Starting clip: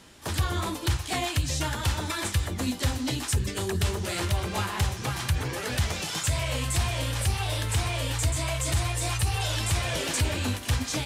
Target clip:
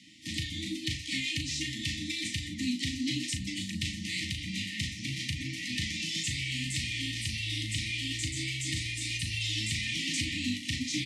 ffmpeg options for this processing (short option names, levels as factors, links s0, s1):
-filter_complex "[0:a]afftfilt=real='re*(1-between(b*sr/4096,330,1800))':imag='im*(1-between(b*sr/4096,330,1800))':win_size=4096:overlap=0.75,acrossover=split=250|1200|1900[s0][s1][s2][s3];[s2]asoftclip=type=tanh:threshold=0.0106[s4];[s0][s1][s4][s3]amix=inputs=4:normalize=0,highpass=190,lowpass=5800,asplit=2[s5][s6];[s6]adelay=37,volume=0.473[s7];[s5][s7]amix=inputs=2:normalize=0"